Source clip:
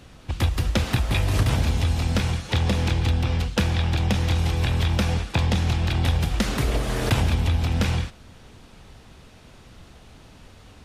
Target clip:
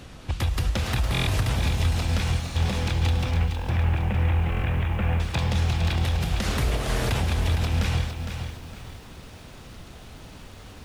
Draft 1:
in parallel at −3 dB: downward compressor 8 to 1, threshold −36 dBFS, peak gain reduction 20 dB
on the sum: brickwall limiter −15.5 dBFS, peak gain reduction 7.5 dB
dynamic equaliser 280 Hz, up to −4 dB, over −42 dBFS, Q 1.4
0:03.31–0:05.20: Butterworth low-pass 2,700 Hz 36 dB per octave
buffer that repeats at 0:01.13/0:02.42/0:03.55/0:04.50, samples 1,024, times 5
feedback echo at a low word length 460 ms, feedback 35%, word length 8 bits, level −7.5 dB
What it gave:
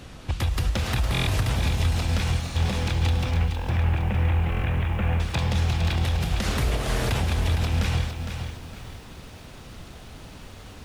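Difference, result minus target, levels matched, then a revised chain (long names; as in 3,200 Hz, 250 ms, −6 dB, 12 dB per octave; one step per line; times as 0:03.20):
downward compressor: peak gain reduction −8 dB
in parallel at −3 dB: downward compressor 8 to 1, threshold −45 dBFS, peak gain reduction 28 dB
on the sum: brickwall limiter −15.5 dBFS, peak gain reduction 6.5 dB
dynamic equaliser 280 Hz, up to −4 dB, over −42 dBFS, Q 1.4
0:03.31–0:05.20: Butterworth low-pass 2,700 Hz 36 dB per octave
buffer that repeats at 0:01.13/0:02.42/0:03.55/0:04.50, samples 1,024, times 5
feedback echo at a low word length 460 ms, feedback 35%, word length 8 bits, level −7.5 dB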